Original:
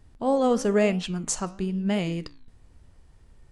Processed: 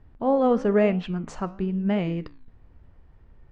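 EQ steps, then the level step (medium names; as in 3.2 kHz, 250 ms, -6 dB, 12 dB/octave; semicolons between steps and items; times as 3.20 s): low-pass 2.1 kHz 12 dB/octave; +1.5 dB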